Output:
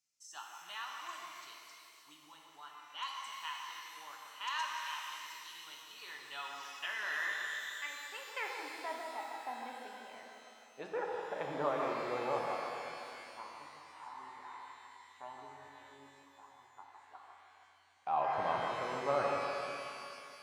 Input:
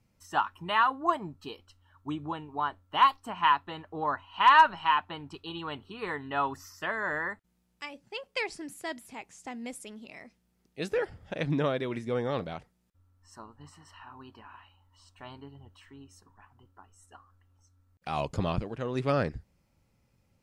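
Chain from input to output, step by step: echo with dull and thin repeats by turns 0.153 s, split 1400 Hz, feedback 52%, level -6 dB; band-pass sweep 6500 Hz -> 890 Hz, 5.45–8.99; shimmer reverb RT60 2.7 s, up +12 st, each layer -8 dB, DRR 0.5 dB; gain +1 dB

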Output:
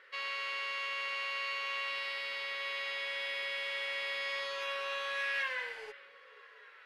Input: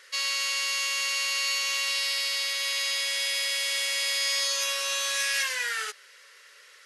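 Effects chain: air absorption 500 m; delay with a stepping band-pass 0.243 s, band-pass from 190 Hz, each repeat 0.7 oct, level -11 dB; spectral repair 5.6–6.1, 1100–4200 Hz both

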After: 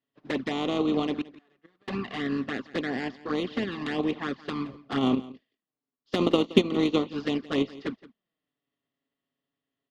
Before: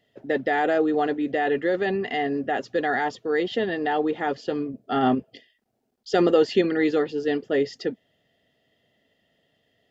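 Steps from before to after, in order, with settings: spectral contrast lowered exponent 0.52; LPF 4400 Hz 24 dB/oct; gate -41 dBFS, range -10 dB; added harmonics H 3 -29 dB, 7 -25 dB, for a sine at -5 dBFS; compressor 3:1, threshold -22 dBFS, peak gain reduction 7 dB; 1.21–1.88 flipped gate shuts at -19 dBFS, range -36 dB; 6.23–7 transient shaper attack +6 dB, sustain -3 dB; envelope flanger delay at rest 7.2 ms, full sweep at -23.5 dBFS; small resonant body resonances 250/1100 Hz, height 11 dB, ringing for 20 ms; on a send: echo 0.171 s -19 dB; on the sum: gain -2.5 dB

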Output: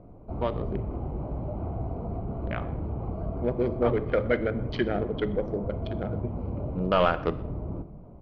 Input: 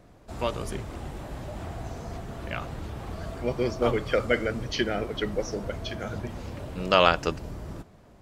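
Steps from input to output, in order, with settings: Wiener smoothing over 25 samples; high shelf 9300 Hz -11.5 dB; notch 2700 Hz, Q 10; in parallel at 0 dB: compressor, threshold -34 dBFS, peak gain reduction 18.5 dB; on the sum: soft clip -10.5 dBFS, distortion -17 dB; air absorption 310 m; echo 0.124 s -24 dB; on a send at -13 dB: reverb RT60 0.85 s, pre-delay 3 ms

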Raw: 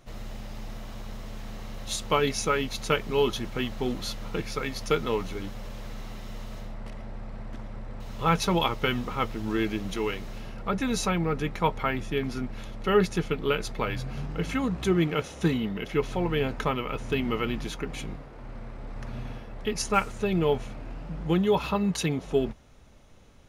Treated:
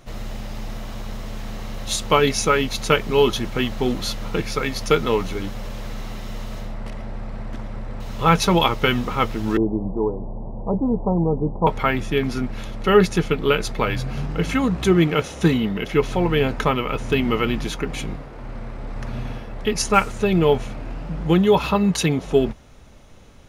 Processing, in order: 9.57–11.67 steep low-pass 1000 Hz 72 dB/oct; gain +7.5 dB

